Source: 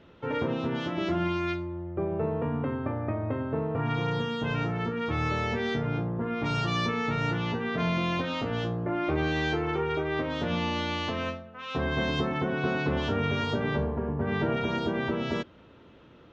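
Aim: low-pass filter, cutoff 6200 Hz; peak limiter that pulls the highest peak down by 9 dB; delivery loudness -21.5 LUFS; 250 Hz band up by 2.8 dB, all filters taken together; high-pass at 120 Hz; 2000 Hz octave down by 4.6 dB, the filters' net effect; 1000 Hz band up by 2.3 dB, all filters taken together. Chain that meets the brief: HPF 120 Hz; LPF 6200 Hz; bell 250 Hz +4 dB; bell 1000 Hz +5.5 dB; bell 2000 Hz -8.5 dB; gain +10 dB; limiter -13 dBFS

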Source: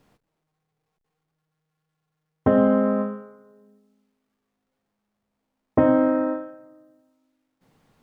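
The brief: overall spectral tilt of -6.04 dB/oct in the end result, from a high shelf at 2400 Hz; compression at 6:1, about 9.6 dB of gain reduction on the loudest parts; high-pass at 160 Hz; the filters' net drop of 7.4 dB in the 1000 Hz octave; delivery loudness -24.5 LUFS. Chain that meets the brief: HPF 160 Hz; bell 1000 Hz -9 dB; high shelf 2400 Hz -4 dB; compressor 6:1, threshold -26 dBFS; gain +7.5 dB

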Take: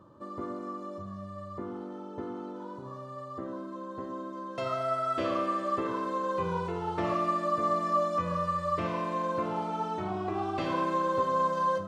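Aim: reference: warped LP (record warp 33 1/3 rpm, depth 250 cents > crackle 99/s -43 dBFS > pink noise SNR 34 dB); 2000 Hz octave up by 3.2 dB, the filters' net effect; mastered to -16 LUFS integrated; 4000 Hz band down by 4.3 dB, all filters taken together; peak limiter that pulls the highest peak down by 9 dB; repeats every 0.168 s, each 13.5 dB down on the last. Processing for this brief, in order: bell 2000 Hz +6 dB; bell 4000 Hz -8.5 dB; limiter -25 dBFS; feedback echo 0.168 s, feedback 21%, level -13.5 dB; record warp 33 1/3 rpm, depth 250 cents; crackle 99/s -43 dBFS; pink noise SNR 34 dB; gain +18 dB

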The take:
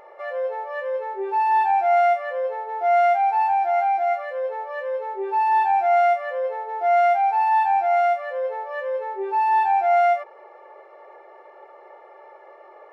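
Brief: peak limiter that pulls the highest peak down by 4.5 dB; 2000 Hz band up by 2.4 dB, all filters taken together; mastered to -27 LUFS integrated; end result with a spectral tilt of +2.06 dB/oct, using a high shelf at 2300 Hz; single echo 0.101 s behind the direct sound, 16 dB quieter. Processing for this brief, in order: bell 2000 Hz +6.5 dB; high shelf 2300 Hz -8 dB; limiter -15.5 dBFS; echo 0.101 s -16 dB; gain -3.5 dB

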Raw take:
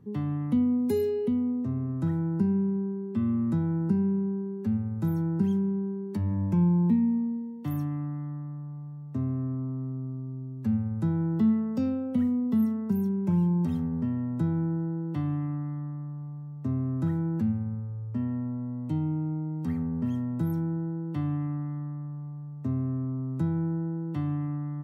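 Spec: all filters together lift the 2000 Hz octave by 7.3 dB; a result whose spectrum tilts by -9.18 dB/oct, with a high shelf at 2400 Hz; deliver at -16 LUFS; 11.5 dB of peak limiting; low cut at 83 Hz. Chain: HPF 83 Hz; bell 2000 Hz +8 dB; high shelf 2400 Hz +3 dB; gain +16 dB; limiter -8.5 dBFS

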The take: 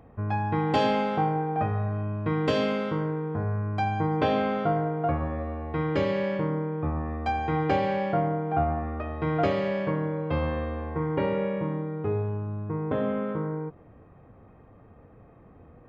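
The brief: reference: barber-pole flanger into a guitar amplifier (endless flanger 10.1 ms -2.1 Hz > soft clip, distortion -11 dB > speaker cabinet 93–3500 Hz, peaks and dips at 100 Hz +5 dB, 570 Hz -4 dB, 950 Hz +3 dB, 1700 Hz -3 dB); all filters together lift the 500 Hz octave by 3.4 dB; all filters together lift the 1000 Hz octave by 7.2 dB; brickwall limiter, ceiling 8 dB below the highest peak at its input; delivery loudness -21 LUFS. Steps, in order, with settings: bell 500 Hz +4 dB; bell 1000 Hz +7.5 dB; limiter -14.5 dBFS; endless flanger 10.1 ms -2.1 Hz; soft clip -27 dBFS; speaker cabinet 93–3500 Hz, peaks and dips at 100 Hz +5 dB, 570 Hz -4 dB, 950 Hz +3 dB, 1700 Hz -3 dB; gain +11.5 dB

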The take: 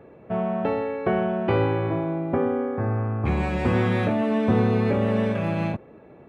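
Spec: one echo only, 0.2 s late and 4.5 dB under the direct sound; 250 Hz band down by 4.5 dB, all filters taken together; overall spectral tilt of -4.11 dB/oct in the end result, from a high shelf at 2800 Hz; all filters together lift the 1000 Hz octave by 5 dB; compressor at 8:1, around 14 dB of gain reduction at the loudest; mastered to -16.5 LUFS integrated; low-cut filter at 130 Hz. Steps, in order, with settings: HPF 130 Hz; bell 250 Hz -5.5 dB; bell 1000 Hz +7.5 dB; high shelf 2800 Hz -4.5 dB; compressor 8:1, threshold -33 dBFS; echo 0.2 s -4.5 dB; gain +18 dB

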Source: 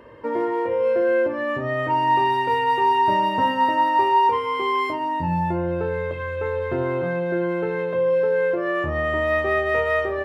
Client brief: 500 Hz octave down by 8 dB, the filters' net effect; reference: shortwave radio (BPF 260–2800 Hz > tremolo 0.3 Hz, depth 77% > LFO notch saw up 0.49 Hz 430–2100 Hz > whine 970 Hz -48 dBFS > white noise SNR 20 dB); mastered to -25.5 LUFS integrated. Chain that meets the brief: BPF 260–2800 Hz; bell 500 Hz -9 dB; tremolo 0.3 Hz, depth 77%; LFO notch saw up 0.49 Hz 430–2100 Hz; whine 970 Hz -48 dBFS; white noise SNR 20 dB; gain +7.5 dB

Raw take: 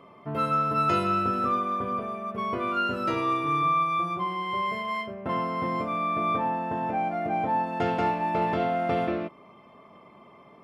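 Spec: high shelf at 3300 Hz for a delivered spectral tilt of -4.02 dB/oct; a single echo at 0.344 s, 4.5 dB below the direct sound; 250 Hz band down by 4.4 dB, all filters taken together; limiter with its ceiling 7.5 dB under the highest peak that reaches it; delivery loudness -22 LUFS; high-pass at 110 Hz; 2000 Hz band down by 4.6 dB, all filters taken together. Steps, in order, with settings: HPF 110 Hz; bell 250 Hz -6 dB; bell 2000 Hz -7.5 dB; high shelf 3300 Hz +4.5 dB; limiter -23.5 dBFS; echo 0.344 s -4.5 dB; gain +8.5 dB

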